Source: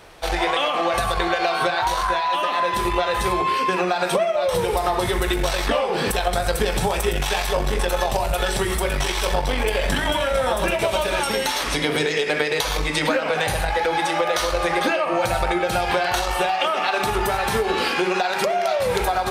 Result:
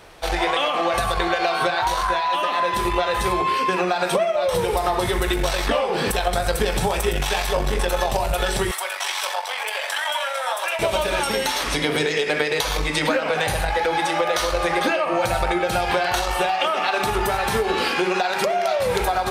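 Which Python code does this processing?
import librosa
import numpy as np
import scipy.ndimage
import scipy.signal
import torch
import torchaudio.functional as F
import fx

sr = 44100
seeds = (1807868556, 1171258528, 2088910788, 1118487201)

y = fx.highpass(x, sr, hz=700.0, slope=24, at=(8.71, 10.79))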